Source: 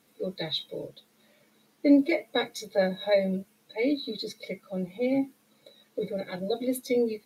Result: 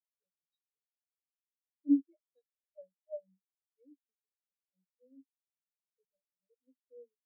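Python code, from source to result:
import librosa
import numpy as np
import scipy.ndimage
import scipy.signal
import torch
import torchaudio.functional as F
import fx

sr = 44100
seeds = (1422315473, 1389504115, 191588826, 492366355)

y = fx.spectral_expand(x, sr, expansion=4.0)
y = y * 10.0 ** (-7.5 / 20.0)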